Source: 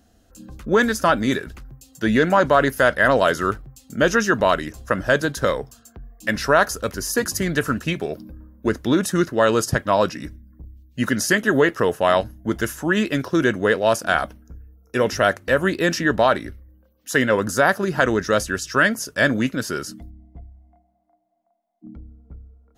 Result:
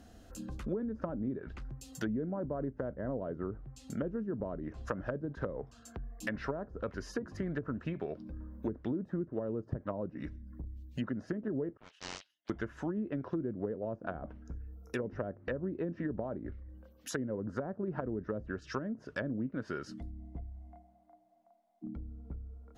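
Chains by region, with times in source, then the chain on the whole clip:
0:11.77–0:12.50: four-pole ladder band-pass 3,400 Hz, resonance 60% + highs frequency-modulated by the lows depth 0.71 ms
whole clip: treble cut that deepens with the level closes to 370 Hz, closed at −15.5 dBFS; downward compressor 2.5 to 1, threshold −44 dBFS; high-shelf EQ 4,900 Hz −6 dB; level +2.5 dB

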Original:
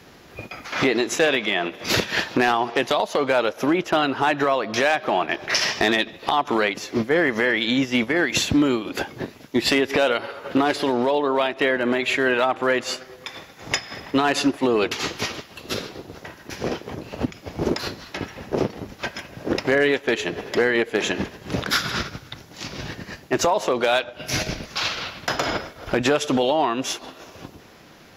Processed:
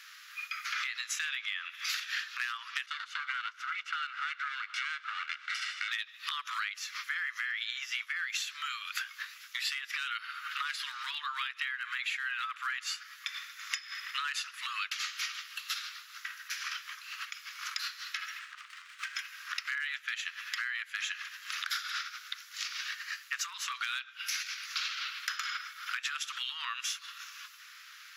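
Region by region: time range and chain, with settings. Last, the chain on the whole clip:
0:02.86–0:05.91: lower of the sound and its delayed copy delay 1.4 ms + head-to-tape spacing loss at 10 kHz 21 dB
0:18.39–0:19.16: Chebyshev low-pass filter 4,100 Hz + downward compressor 12 to 1, threshold −29 dBFS + windowed peak hold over 5 samples
whole clip: Butterworth high-pass 1,200 Hz 72 dB per octave; downward compressor 6 to 1, threshold −34 dBFS; level +1 dB

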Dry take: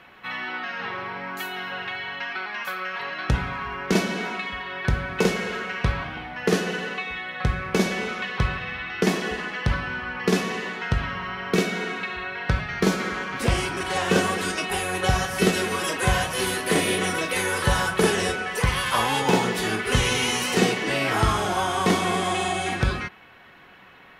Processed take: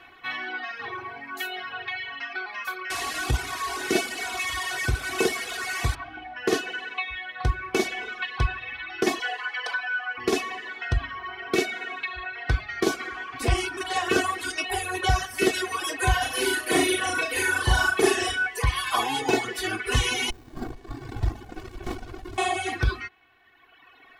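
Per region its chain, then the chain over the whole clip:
0:02.90–0:05.95: linear delta modulator 64 kbit/s, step −21 dBFS + high-pass filter 54 Hz
0:09.19–0:10.18: high-pass filter 440 Hz 24 dB per octave + comb filter 4 ms, depth 66%
0:16.18–0:18.47: double-tracking delay 43 ms −11 dB + flutter between parallel walls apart 6.1 metres, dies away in 0.52 s
0:20.30–0:22.38: phaser with its sweep stopped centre 1,900 Hz, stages 8 + windowed peak hold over 65 samples
whole clip: reverb reduction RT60 1.8 s; notch filter 430 Hz, Q 12; comb filter 2.7 ms, depth 89%; level −3 dB

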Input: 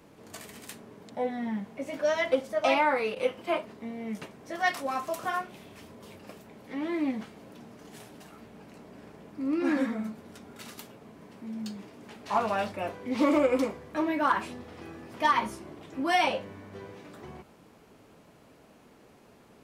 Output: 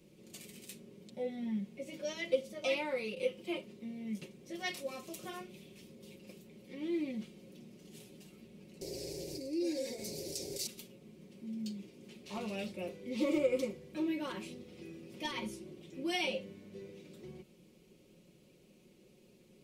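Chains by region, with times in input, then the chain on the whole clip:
0:08.81–0:10.67: high shelf with overshoot 3,900 Hz +6.5 dB, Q 3 + phaser with its sweep stopped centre 510 Hz, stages 4 + envelope flattener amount 70%
whole clip: flat-topped bell 1,100 Hz −15.5 dB; comb filter 5.5 ms, depth 65%; level −6 dB

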